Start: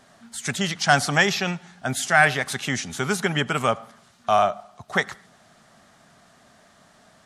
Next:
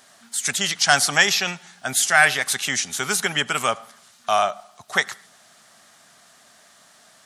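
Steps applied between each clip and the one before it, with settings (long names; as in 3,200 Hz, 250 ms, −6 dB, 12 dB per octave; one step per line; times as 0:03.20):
spectral tilt +3 dB per octave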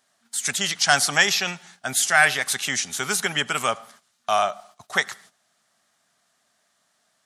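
noise gate −47 dBFS, range −14 dB
level −1.5 dB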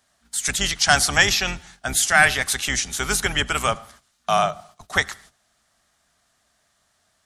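sub-octave generator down 2 octaves, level +3 dB
level +1.5 dB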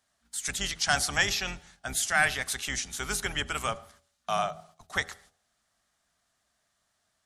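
hum removal 81.62 Hz, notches 10
level −9 dB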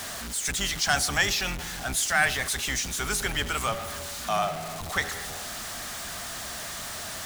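converter with a step at zero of −30 dBFS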